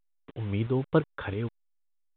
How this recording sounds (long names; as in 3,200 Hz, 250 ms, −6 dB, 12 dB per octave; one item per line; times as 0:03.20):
tremolo saw up 3 Hz, depth 55%
a quantiser's noise floor 8 bits, dither none
A-law companding